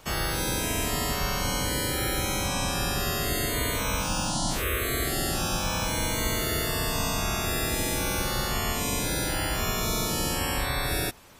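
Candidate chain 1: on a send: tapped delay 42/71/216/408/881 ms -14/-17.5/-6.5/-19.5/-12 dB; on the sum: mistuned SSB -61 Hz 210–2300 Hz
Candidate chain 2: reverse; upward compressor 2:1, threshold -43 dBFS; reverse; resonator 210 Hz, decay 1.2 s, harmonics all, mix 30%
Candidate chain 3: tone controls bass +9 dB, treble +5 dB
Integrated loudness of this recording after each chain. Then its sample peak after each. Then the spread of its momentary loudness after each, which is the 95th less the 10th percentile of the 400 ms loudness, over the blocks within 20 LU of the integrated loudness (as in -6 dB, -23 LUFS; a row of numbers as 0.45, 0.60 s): -31.0, -30.0, -23.0 LUFS; -18.0, -17.0, -9.0 dBFS; 1, 1, 1 LU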